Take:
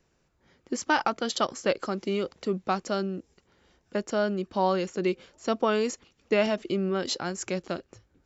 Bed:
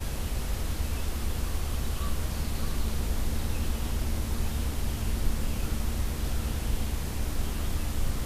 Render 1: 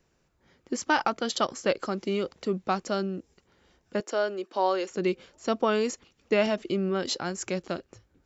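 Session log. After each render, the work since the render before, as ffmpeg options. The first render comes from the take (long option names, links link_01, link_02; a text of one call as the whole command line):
ffmpeg -i in.wav -filter_complex "[0:a]asettb=1/sr,asplit=3[link_01][link_02][link_03];[link_01]atrim=end=4.004[link_04];[link_02]atrim=start=4:end=4.91,asetpts=PTS-STARTPTS,afade=type=in:duration=0.004:curve=qsin,afade=type=out:start_time=0.906:duration=0.004:curve=qsin,highpass=frequency=310:width=0.5412,highpass=frequency=310:width=1.3066[link_05];[link_03]atrim=start=4.906[link_06];[link_04][link_05]acrossfade=duration=0.004:curve1=hsin:curve2=qsin[link_07];[link_07][link_06]acrossfade=duration=0.004:curve1=qsin:curve2=hsin" out.wav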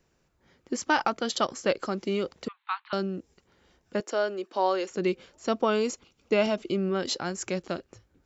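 ffmpeg -i in.wav -filter_complex "[0:a]asettb=1/sr,asplit=3[link_01][link_02][link_03];[link_01]atrim=end=2.484[link_04];[link_02]atrim=start=2.48:end=2.93,asetpts=PTS-STARTPTS,afade=type=in:duration=0.004:curve=qsin,afade=type=out:start_time=0.446:duration=0.004:curve=qsin,asuperpass=centerf=1900:order=20:qfactor=0.6[link_05];[link_03]atrim=start=2.926[link_06];[link_04][link_05]acrossfade=duration=0.004:curve1=hsin:curve2=qsin[link_07];[link_07][link_06]acrossfade=duration=0.004:curve1=qsin:curve2=hsin,asettb=1/sr,asplit=3[link_08][link_09][link_10];[link_08]atrim=end=5.664[link_11];[link_09]atrim=start=5.66:end=6.75,asetpts=PTS-STARTPTS,afade=type=in:duration=0.004:curve=qsin,afade=type=out:start_time=1.086:duration=0.004:curve=qsin,bandreject=frequency=1800:width=6.1[link_12];[link_10]atrim=start=6.746[link_13];[link_11][link_12]acrossfade=duration=0.004:curve1=hsin:curve2=qsin[link_14];[link_14][link_13]acrossfade=duration=0.004:curve1=qsin:curve2=hsin" out.wav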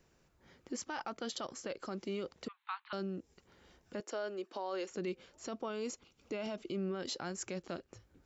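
ffmpeg -i in.wav -af "acompressor=threshold=-49dB:ratio=1.5,alimiter=level_in=6dB:limit=-24dB:level=0:latency=1:release=21,volume=-6dB" out.wav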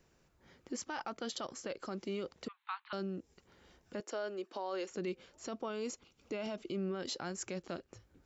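ffmpeg -i in.wav -af anull out.wav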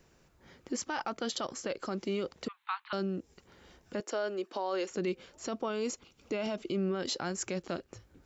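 ffmpeg -i in.wav -af "volume=5.5dB" out.wav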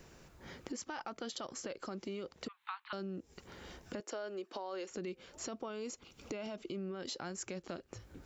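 ffmpeg -i in.wav -filter_complex "[0:a]asplit=2[link_01][link_02];[link_02]alimiter=level_in=8.5dB:limit=-24dB:level=0:latency=1:release=380,volume=-8.5dB,volume=1dB[link_03];[link_01][link_03]amix=inputs=2:normalize=0,acompressor=threshold=-43dB:ratio=3" out.wav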